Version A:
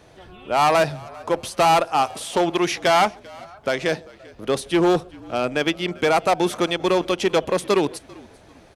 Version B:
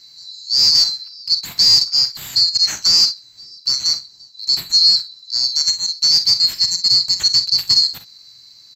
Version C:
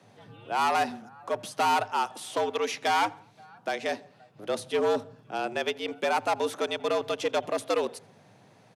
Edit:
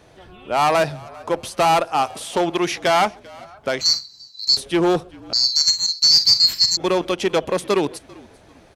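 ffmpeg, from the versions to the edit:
ffmpeg -i take0.wav -i take1.wav -filter_complex "[1:a]asplit=2[link_01][link_02];[0:a]asplit=3[link_03][link_04][link_05];[link_03]atrim=end=3.812[link_06];[link_01]atrim=start=3.808:end=4.572[link_07];[link_04]atrim=start=4.568:end=5.332[link_08];[link_02]atrim=start=5.328:end=6.772[link_09];[link_05]atrim=start=6.768[link_10];[link_06][link_07]acrossfade=duration=0.004:curve1=hsin:curve2=hsin[link_11];[link_11][link_08]acrossfade=duration=0.004:curve1=hsin:curve2=hsin[link_12];[link_12][link_09]acrossfade=duration=0.004:curve1=hsin:curve2=hsin[link_13];[link_13][link_10]acrossfade=duration=0.004:curve1=hsin:curve2=hsin" out.wav

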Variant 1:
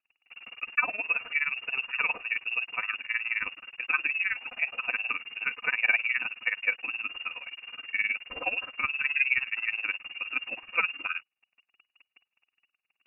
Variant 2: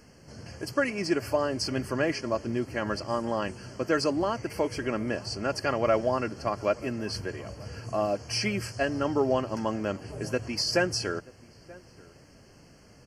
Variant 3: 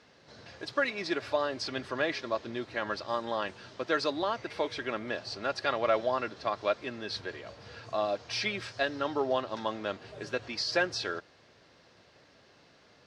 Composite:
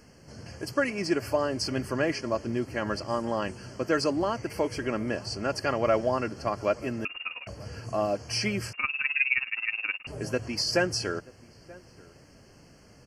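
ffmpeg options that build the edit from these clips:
ffmpeg -i take0.wav -i take1.wav -filter_complex "[0:a]asplit=2[link_01][link_02];[1:a]asplit=3[link_03][link_04][link_05];[link_03]atrim=end=7.052[link_06];[link_01]atrim=start=7.048:end=7.472[link_07];[link_04]atrim=start=7.468:end=8.732[link_08];[link_02]atrim=start=8.728:end=10.072[link_09];[link_05]atrim=start=10.068[link_10];[link_06][link_07]acrossfade=duration=0.004:curve1=hsin:curve2=hsin[link_11];[link_11][link_08]acrossfade=duration=0.004:curve1=hsin:curve2=hsin[link_12];[link_12][link_09]acrossfade=duration=0.004:curve1=hsin:curve2=hsin[link_13];[link_13][link_10]acrossfade=duration=0.004:curve1=hsin:curve2=hsin" out.wav

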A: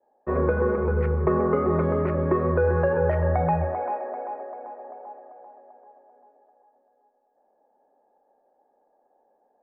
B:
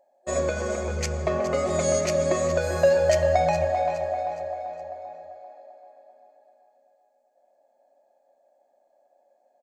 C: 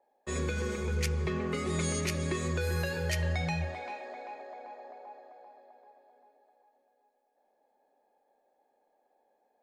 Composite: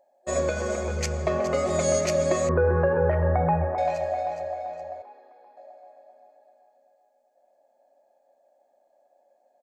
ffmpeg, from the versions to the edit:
ffmpeg -i take0.wav -i take1.wav -i take2.wav -filter_complex "[1:a]asplit=3[link_01][link_02][link_03];[link_01]atrim=end=2.492[link_04];[0:a]atrim=start=2.488:end=3.782[link_05];[link_02]atrim=start=3.778:end=5.022[link_06];[2:a]atrim=start=5.018:end=5.572[link_07];[link_03]atrim=start=5.568[link_08];[link_04][link_05]acrossfade=duration=0.004:curve1=hsin:curve2=hsin[link_09];[link_09][link_06]acrossfade=duration=0.004:curve1=hsin:curve2=hsin[link_10];[link_10][link_07]acrossfade=duration=0.004:curve1=hsin:curve2=hsin[link_11];[link_11][link_08]acrossfade=duration=0.004:curve1=hsin:curve2=hsin" out.wav

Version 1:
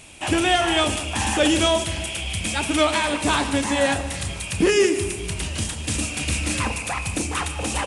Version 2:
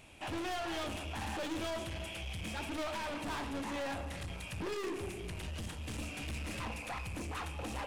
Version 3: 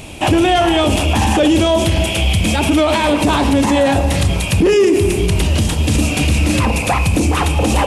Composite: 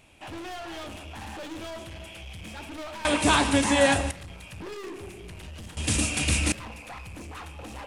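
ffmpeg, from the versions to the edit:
ffmpeg -i take0.wav -i take1.wav -filter_complex "[0:a]asplit=2[link_01][link_02];[1:a]asplit=3[link_03][link_04][link_05];[link_03]atrim=end=3.052[link_06];[link_01]atrim=start=3.048:end=4.112[link_07];[link_04]atrim=start=4.108:end=5.772[link_08];[link_02]atrim=start=5.768:end=6.522[link_09];[link_05]atrim=start=6.518[link_10];[link_06][link_07]acrossfade=duration=0.004:curve1=hsin:curve2=hsin[link_11];[link_11][link_08]acrossfade=duration=0.004:curve1=hsin:curve2=hsin[link_12];[link_12][link_09]acrossfade=duration=0.004:curve1=hsin:curve2=hsin[link_13];[link_13][link_10]acrossfade=duration=0.004:curve1=hsin:curve2=hsin" out.wav

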